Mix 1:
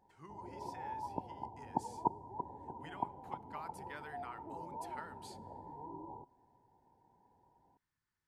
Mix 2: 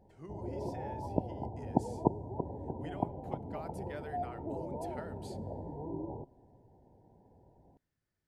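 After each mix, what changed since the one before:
background: add bass shelf 190 Hz +10 dB; master: add resonant low shelf 780 Hz +6.5 dB, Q 3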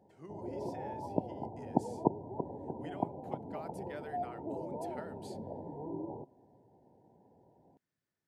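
speech: send off; master: add high-pass 150 Hz 12 dB/octave

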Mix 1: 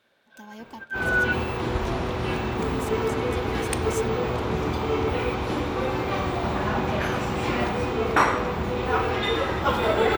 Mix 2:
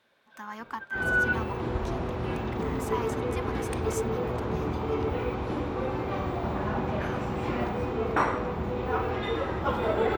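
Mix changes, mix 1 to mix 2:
speech: remove Butterworth band-stop 1.4 kHz, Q 0.76; second sound: add treble shelf 2 kHz -10.5 dB; reverb: off

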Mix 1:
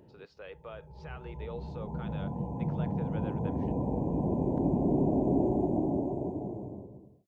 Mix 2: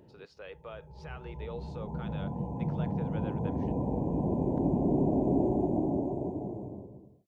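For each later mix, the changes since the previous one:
speech: remove distance through air 79 m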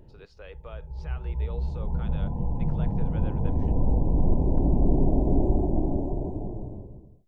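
background: remove high-pass 150 Hz 12 dB/octave

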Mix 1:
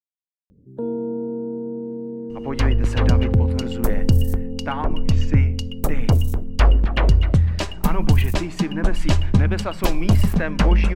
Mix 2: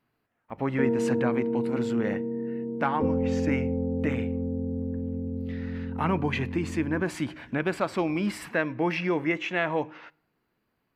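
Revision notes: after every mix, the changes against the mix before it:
speech: entry -1.85 s; second sound: muted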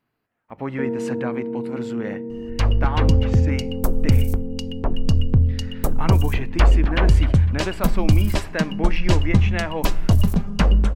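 second sound: unmuted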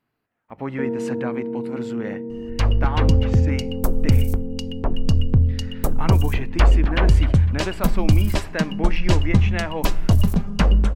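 speech: send -10.0 dB

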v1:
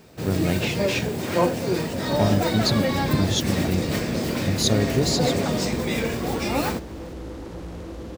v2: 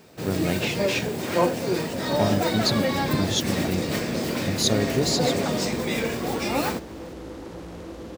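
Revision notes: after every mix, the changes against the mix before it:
master: add bass shelf 100 Hz -10.5 dB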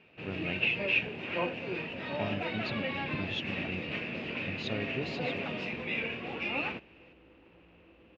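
second sound -9.5 dB; master: add four-pole ladder low-pass 2.8 kHz, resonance 80%

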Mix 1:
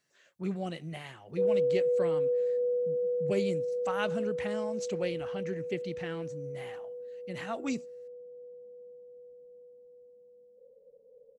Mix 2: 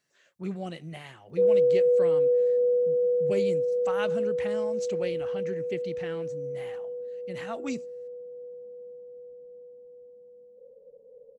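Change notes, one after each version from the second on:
background +6.0 dB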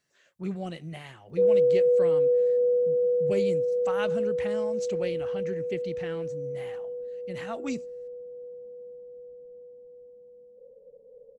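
master: add bass shelf 76 Hz +9 dB

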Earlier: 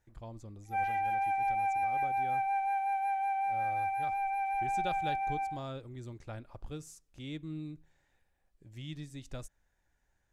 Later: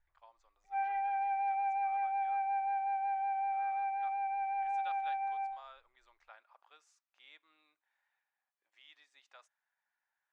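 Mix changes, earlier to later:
speech: add high-pass 920 Hz 24 dB/octave; master: add tape spacing loss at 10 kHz 28 dB

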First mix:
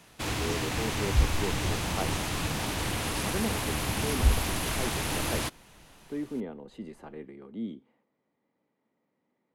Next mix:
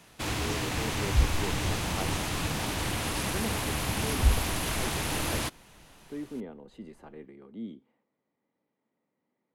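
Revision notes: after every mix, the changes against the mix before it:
speech -3.5 dB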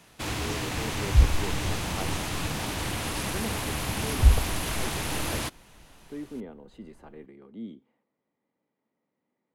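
second sound +5.5 dB

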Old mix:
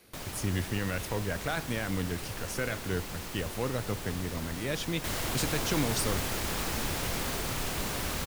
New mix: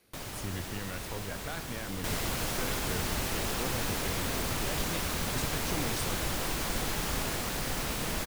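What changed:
speech -7.5 dB; second sound: entry -3.00 s

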